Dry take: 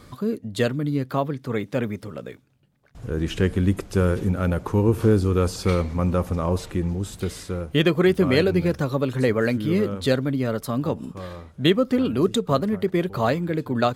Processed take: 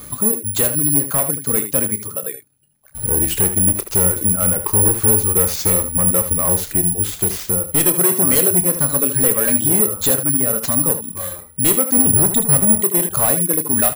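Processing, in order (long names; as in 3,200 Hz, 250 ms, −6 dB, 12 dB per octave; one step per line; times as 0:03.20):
reverb reduction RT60 1.2 s
0:11.97–0:12.82: bass and treble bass +13 dB, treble −10 dB
in parallel at +2 dB: downward compressor, threshold −27 dBFS, peak gain reduction 16 dB
on the sum: hard clipping −16.5 dBFS, distortion −9 dB
ambience of single reflections 28 ms −11 dB, 77 ms −10 dB
bad sample-rate conversion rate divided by 4×, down none, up zero stuff
level −1 dB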